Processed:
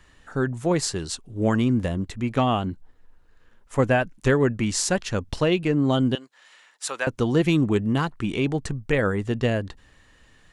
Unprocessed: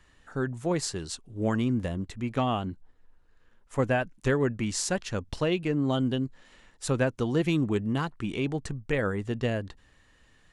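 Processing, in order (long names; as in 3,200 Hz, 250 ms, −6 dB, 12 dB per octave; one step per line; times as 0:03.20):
0:06.15–0:07.07: high-pass filter 910 Hz 12 dB per octave
level +5.5 dB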